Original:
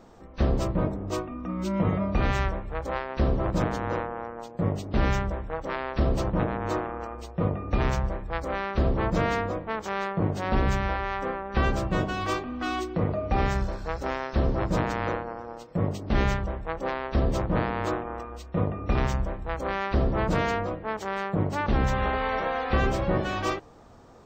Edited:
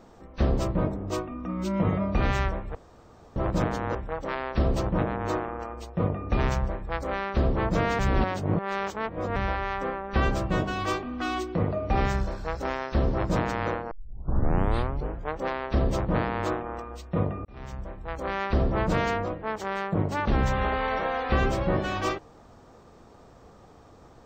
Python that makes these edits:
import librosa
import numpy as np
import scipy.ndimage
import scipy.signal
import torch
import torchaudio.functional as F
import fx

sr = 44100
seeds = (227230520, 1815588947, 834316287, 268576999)

y = fx.edit(x, sr, fx.room_tone_fill(start_s=2.75, length_s=0.61),
    fx.cut(start_s=3.95, length_s=1.41),
    fx.reverse_span(start_s=9.4, length_s=1.37),
    fx.tape_start(start_s=15.32, length_s=1.47),
    fx.fade_in_span(start_s=18.86, length_s=0.97), tone=tone)